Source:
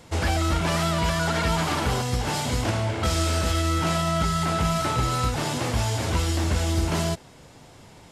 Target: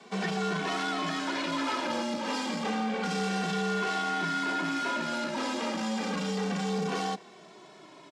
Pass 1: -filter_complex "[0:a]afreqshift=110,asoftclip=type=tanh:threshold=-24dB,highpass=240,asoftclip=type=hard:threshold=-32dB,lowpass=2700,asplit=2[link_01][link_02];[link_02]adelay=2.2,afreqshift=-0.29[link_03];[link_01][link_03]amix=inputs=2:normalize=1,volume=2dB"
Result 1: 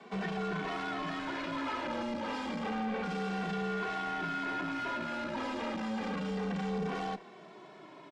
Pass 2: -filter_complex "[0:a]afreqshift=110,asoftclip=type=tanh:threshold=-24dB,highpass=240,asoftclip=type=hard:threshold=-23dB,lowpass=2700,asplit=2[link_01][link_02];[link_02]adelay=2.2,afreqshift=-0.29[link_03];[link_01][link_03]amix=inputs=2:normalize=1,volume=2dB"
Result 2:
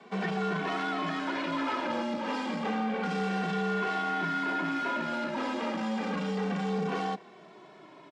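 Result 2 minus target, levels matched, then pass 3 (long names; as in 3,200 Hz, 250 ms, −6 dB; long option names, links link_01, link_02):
4,000 Hz band −5.0 dB
-filter_complex "[0:a]afreqshift=110,asoftclip=type=tanh:threshold=-24dB,highpass=240,asoftclip=type=hard:threshold=-23dB,lowpass=5500,asplit=2[link_01][link_02];[link_02]adelay=2.2,afreqshift=-0.29[link_03];[link_01][link_03]amix=inputs=2:normalize=1,volume=2dB"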